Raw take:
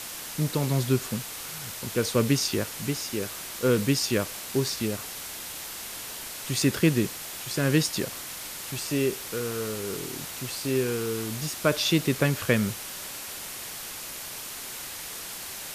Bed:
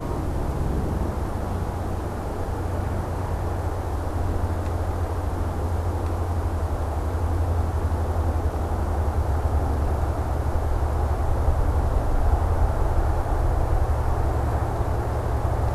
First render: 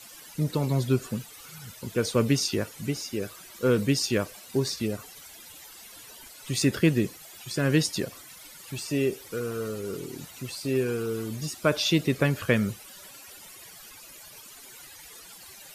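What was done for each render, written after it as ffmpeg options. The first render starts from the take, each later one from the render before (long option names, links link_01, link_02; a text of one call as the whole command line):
ffmpeg -i in.wav -af "afftdn=noise_reduction=15:noise_floor=-38" out.wav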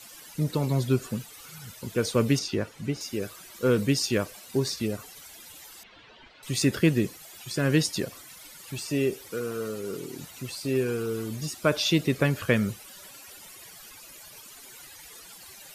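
ffmpeg -i in.wav -filter_complex "[0:a]asettb=1/sr,asplit=3[link_01][link_02][link_03];[link_01]atrim=end=2.394[link_04];[link_02]atrim=start=2.39:end=3.01,asetpts=PTS-STARTPTS,afade=type=in:duration=0.004:curve=qsin,afade=type=out:start_time=0.616:duration=0.004:curve=qsin,aemphasis=mode=reproduction:type=50kf[link_05];[link_03]atrim=start=3.006[link_06];[link_04][link_05]acrossfade=duration=0.004:curve1=hsin:curve2=qsin[link_07];[link_07][link_06]acrossfade=duration=0.004:curve1=qsin:curve2=hsin,asettb=1/sr,asplit=3[link_08][link_09][link_10];[link_08]atrim=end=5.834[link_11];[link_09]atrim=start=5.83:end=6.43,asetpts=PTS-STARTPTS,afade=type=in:duration=0.004:curve=qsin,afade=type=out:start_time=0.596:duration=0.004:curve=qsin,lowpass=frequency=3600:width=0.5412,lowpass=frequency=3600:width=1.3066[link_12];[link_10]atrim=start=6.426[link_13];[link_11][link_12]acrossfade=duration=0.004:curve1=hsin:curve2=qsin[link_14];[link_14][link_13]acrossfade=duration=0.004:curve1=qsin:curve2=hsin,asettb=1/sr,asplit=3[link_15][link_16][link_17];[link_15]atrim=end=9.304[link_18];[link_16]atrim=start=9.3:end=10.19,asetpts=PTS-STARTPTS,afade=type=in:duration=0.004:curve=qsin,afade=type=out:start_time=0.886:duration=0.004:curve=qsin,highpass=130[link_19];[link_17]atrim=start=10.186[link_20];[link_18][link_19]acrossfade=duration=0.004:curve1=hsin:curve2=qsin[link_21];[link_21][link_20]acrossfade=duration=0.004:curve1=qsin:curve2=hsin" out.wav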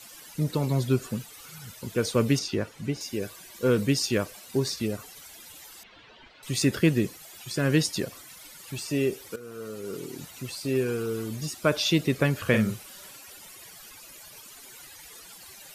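ffmpeg -i in.wav -filter_complex "[0:a]asettb=1/sr,asplit=3[link_01][link_02][link_03];[link_01]atrim=end=2.904[link_04];[link_02]atrim=start=2.9:end=3.68,asetpts=PTS-STARTPTS,afade=type=in:duration=0.004:curve=qsin,afade=type=out:start_time=0.776:duration=0.004:curve=qsin,asuperstop=centerf=1300:order=4:qfactor=7.3[link_05];[link_03]atrim=start=3.676[link_06];[link_04][link_05]acrossfade=duration=0.004:curve1=hsin:curve2=qsin[link_07];[link_07][link_06]acrossfade=duration=0.004:curve1=qsin:curve2=hsin,asettb=1/sr,asplit=3[link_08][link_09][link_10];[link_08]atrim=end=12.414[link_11];[link_09]atrim=start=12.41:end=13.17,asetpts=PTS-STARTPTS,afade=type=in:duration=0.004:curve=qsin,afade=type=out:start_time=0.756:duration=0.004:curve=qsin,asplit=2[link_12][link_13];[link_13]adelay=46,volume=-7dB[link_14];[link_12][link_14]amix=inputs=2:normalize=0,atrim=end_sample=33516[link_15];[link_10]atrim=start=13.166[link_16];[link_11][link_15]acrossfade=duration=0.004:curve1=hsin:curve2=qsin[link_17];[link_17][link_16]acrossfade=duration=0.004:curve1=qsin:curve2=hsin,asplit=2[link_18][link_19];[link_18]atrim=end=9.36,asetpts=PTS-STARTPTS,afade=type=out:start_time=9.356:duration=0.004:curve=hsin:silence=0.188365[link_20];[link_19]atrim=start=9.36,asetpts=PTS-STARTPTS,afade=type=in:duration=0.67:silence=0.188365[link_21];[link_20][link_21]concat=n=2:v=0:a=1" out.wav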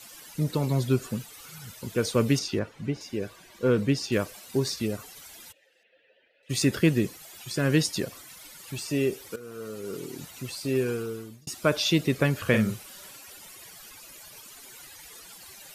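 ffmpeg -i in.wav -filter_complex "[0:a]asettb=1/sr,asplit=3[link_01][link_02][link_03];[link_01]atrim=end=2.594[link_04];[link_02]atrim=start=2.59:end=4.12,asetpts=PTS-STARTPTS,afade=type=in:duration=0.004:curve=qsin,afade=type=out:start_time=1.526:duration=0.004:curve=qsin,lowpass=frequency=2900:poles=1[link_05];[link_03]atrim=start=4.116[link_06];[link_04][link_05]acrossfade=duration=0.004:curve1=hsin:curve2=qsin[link_07];[link_07][link_06]acrossfade=duration=0.004:curve1=qsin:curve2=hsin,asplit=3[link_08][link_09][link_10];[link_08]afade=type=out:start_time=5.51:duration=0.02[link_11];[link_09]asplit=3[link_12][link_13][link_14];[link_12]bandpass=frequency=530:width_type=q:width=8,volume=0dB[link_15];[link_13]bandpass=frequency=1840:width_type=q:width=8,volume=-6dB[link_16];[link_14]bandpass=frequency=2480:width_type=q:width=8,volume=-9dB[link_17];[link_15][link_16][link_17]amix=inputs=3:normalize=0,afade=type=in:start_time=5.51:duration=0.02,afade=type=out:start_time=6.49:duration=0.02[link_18];[link_10]afade=type=in:start_time=6.49:duration=0.02[link_19];[link_11][link_18][link_19]amix=inputs=3:normalize=0,asplit=2[link_20][link_21];[link_20]atrim=end=11.47,asetpts=PTS-STARTPTS,afade=type=out:start_time=10.89:duration=0.58[link_22];[link_21]atrim=start=11.47,asetpts=PTS-STARTPTS,afade=type=in:duration=0.004:curve=hsin[link_23];[link_22][link_23]concat=n=2:v=0:a=1" out.wav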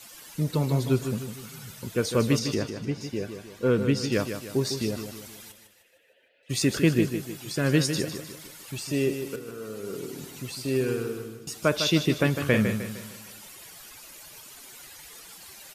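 ffmpeg -i in.wav -af "aecho=1:1:153|306|459|612|765:0.376|0.165|0.0728|0.032|0.0141" out.wav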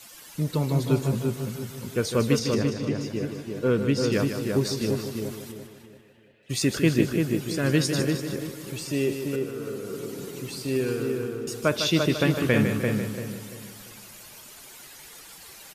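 ffmpeg -i in.wav -filter_complex "[0:a]asplit=2[link_01][link_02];[link_02]adelay=341,lowpass=frequency=1800:poles=1,volume=-3.5dB,asplit=2[link_03][link_04];[link_04]adelay=341,lowpass=frequency=1800:poles=1,volume=0.35,asplit=2[link_05][link_06];[link_06]adelay=341,lowpass=frequency=1800:poles=1,volume=0.35,asplit=2[link_07][link_08];[link_08]adelay=341,lowpass=frequency=1800:poles=1,volume=0.35,asplit=2[link_09][link_10];[link_10]adelay=341,lowpass=frequency=1800:poles=1,volume=0.35[link_11];[link_01][link_03][link_05][link_07][link_09][link_11]amix=inputs=6:normalize=0" out.wav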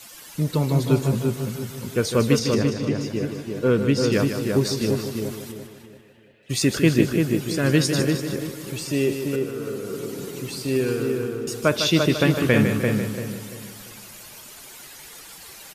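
ffmpeg -i in.wav -af "volume=3.5dB" out.wav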